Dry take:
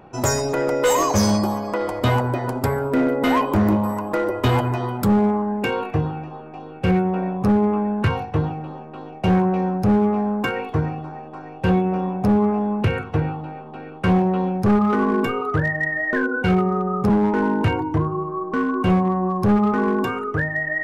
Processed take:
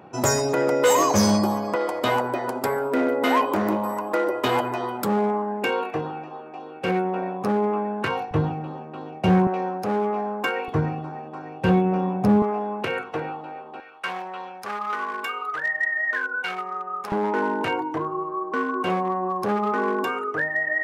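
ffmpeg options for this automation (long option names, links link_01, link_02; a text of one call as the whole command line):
ffmpeg -i in.wav -af "asetnsamples=nb_out_samples=441:pad=0,asendcmd='1.75 highpass f 320;8.31 highpass f 110;9.47 highpass f 400;10.68 highpass f 120;12.42 highpass f 400;13.8 highpass f 1100;17.12 highpass f 390',highpass=130" out.wav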